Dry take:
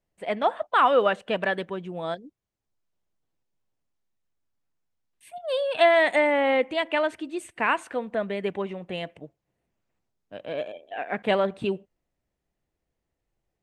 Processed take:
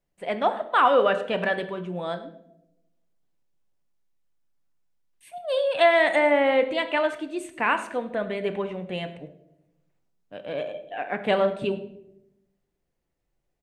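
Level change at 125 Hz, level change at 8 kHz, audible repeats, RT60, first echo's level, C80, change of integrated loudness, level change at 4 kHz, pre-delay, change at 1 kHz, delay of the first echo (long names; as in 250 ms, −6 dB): +2.0 dB, can't be measured, 1, 0.85 s, −18.5 dB, 14.0 dB, +1.0 dB, +0.5 dB, 3 ms, +0.5 dB, 104 ms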